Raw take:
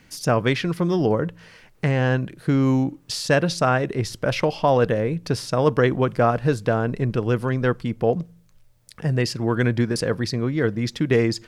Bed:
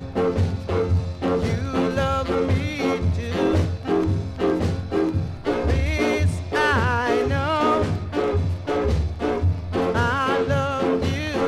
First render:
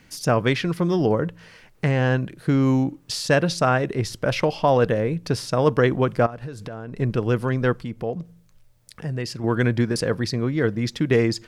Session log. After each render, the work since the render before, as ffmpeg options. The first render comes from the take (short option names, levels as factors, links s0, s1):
-filter_complex "[0:a]asettb=1/sr,asplit=3[s0][s1][s2];[s0]atrim=end=6.264[s3];[s1]atrim=start=6.26:end=7,asetpts=PTS-STARTPTS,afade=t=in:d=0.004:c=qsin,afade=t=out:st=0.736:d=0.004:c=qsin,acompressor=threshold=0.0355:ratio=16:attack=3.2:release=140:knee=1:detection=peak[s4];[s2]atrim=start=6.996[s5];[s3][s4]acrossfade=d=0.004:c1=hsin:c2=qsin[s6];[s6][s5]acrossfade=d=0.004:c1=qsin:c2=hsin,asettb=1/sr,asplit=3[s7][s8][s9];[s7]atrim=end=7.844[s10];[s8]atrim=start=7.84:end=9.44,asetpts=PTS-STARTPTS,afade=t=in:d=0.004:c=qsin,afade=t=out:st=1.596:d=0.004:c=qsin,acompressor=threshold=0.0178:ratio=1.5:attack=3.2:release=140:knee=1:detection=peak[s11];[s9]atrim=start=9.436[s12];[s10][s11]acrossfade=d=0.004:c1=hsin:c2=qsin[s13];[s13][s12]acrossfade=d=0.004:c1=qsin:c2=hsin"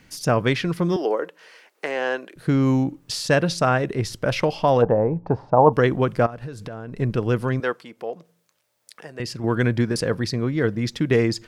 -filter_complex "[0:a]asettb=1/sr,asplit=3[s0][s1][s2];[s0]atrim=end=0.964[s3];[s1]atrim=start=0.96:end=2.36,asetpts=PTS-STARTPTS,afade=t=in:d=0.004:c=qsin,afade=t=out:st=1.396:d=0.004:c=qsin,highpass=f=360:w=0.5412,highpass=f=360:w=1.3066[s4];[s2]atrim=start=2.356[s5];[s3][s4]acrossfade=d=0.004:c1=hsin:c2=qsin[s6];[s6][s5]acrossfade=d=0.004:c1=qsin:c2=hsin,asplit=3[s7][s8][s9];[s7]afade=t=out:st=4.81:d=0.02[s10];[s8]lowpass=f=850:t=q:w=6.1,afade=t=in:st=4.81:d=0.02,afade=t=out:st=5.72:d=0.02[s11];[s9]afade=t=in:st=5.72:d=0.02[s12];[s10][s11][s12]amix=inputs=3:normalize=0,asettb=1/sr,asplit=3[s13][s14][s15];[s13]atrim=end=7.604[s16];[s14]atrim=start=7.6:end=9.2,asetpts=PTS-STARTPTS,afade=t=in:d=0.004:c=qsin,afade=t=out:st=1.596:d=0.004:c=qsin,highpass=440[s17];[s15]atrim=start=9.196[s18];[s16][s17]acrossfade=d=0.004:c1=hsin:c2=qsin[s19];[s19][s18]acrossfade=d=0.004:c1=qsin:c2=hsin"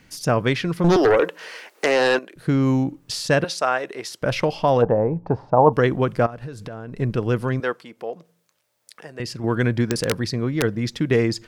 -filter_complex "[0:a]asettb=1/sr,asplit=3[s0][s1][s2];[s0]atrim=end=0.844[s3];[s1]atrim=start=0.84:end=2.19,asetpts=PTS-STARTPTS,afade=t=in:d=0.004:c=qsin,afade=t=out:st=1.346:d=0.004:c=qsin,aeval=exprs='0.266*sin(PI/2*2.24*val(0)/0.266)':c=same[s4];[s2]atrim=start=2.186[s5];[s3][s4]acrossfade=d=0.004:c1=hsin:c2=qsin[s6];[s6][s5]acrossfade=d=0.004:c1=qsin:c2=hsin,asettb=1/sr,asplit=3[s7][s8][s9];[s7]atrim=end=3.444[s10];[s8]atrim=start=3.44:end=4.22,asetpts=PTS-STARTPTS,afade=t=in:d=0.004:c=qsin,afade=t=out:st=0.776:d=0.004:c=qsin,highpass=500[s11];[s9]atrim=start=4.216[s12];[s10][s11]acrossfade=d=0.004:c1=hsin:c2=qsin[s13];[s13][s12]acrossfade=d=0.004:c1=qsin:c2=hsin,asettb=1/sr,asplit=3[s14][s15][s16];[s14]atrim=end=9.884[s17];[s15]atrim=start=9.88:end=10.63,asetpts=PTS-STARTPTS,afade=t=in:d=0.004:c=qsin,afade=t=out:st=0.746:d=0.004:c=qsin,aeval=exprs='(mod(3.98*val(0)+1,2)-1)/3.98':c=same[s18];[s16]atrim=start=10.626[s19];[s17][s18]acrossfade=d=0.004:c1=hsin:c2=qsin[s20];[s20][s19]acrossfade=d=0.004:c1=qsin:c2=hsin"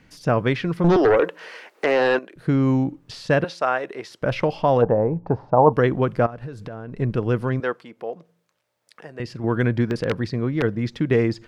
-filter_complex "[0:a]acrossover=split=4400[s0][s1];[s1]acompressor=threshold=0.0126:ratio=4:attack=1:release=60[s2];[s0][s2]amix=inputs=2:normalize=0,highshelf=f=4400:g=-11"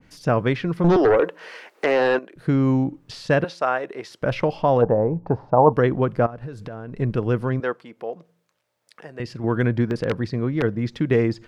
-af "adynamicequalizer=threshold=0.0178:dfrequency=1600:dqfactor=0.7:tfrequency=1600:tqfactor=0.7:attack=5:release=100:ratio=0.375:range=3:mode=cutabove:tftype=highshelf"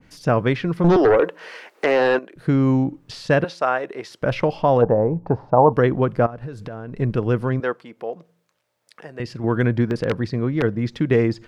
-af "volume=1.19,alimiter=limit=0.708:level=0:latency=1"